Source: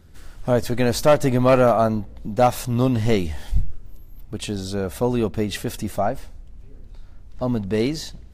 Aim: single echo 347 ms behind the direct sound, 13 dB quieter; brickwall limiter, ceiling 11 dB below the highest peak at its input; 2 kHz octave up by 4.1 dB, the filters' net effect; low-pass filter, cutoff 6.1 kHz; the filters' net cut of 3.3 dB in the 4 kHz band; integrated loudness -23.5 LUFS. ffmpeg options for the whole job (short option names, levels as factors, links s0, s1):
-af "lowpass=6100,equalizer=f=2000:t=o:g=6.5,equalizer=f=4000:t=o:g=-5.5,alimiter=limit=0.168:level=0:latency=1,aecho=1:1:347:0.224,volume=1.41"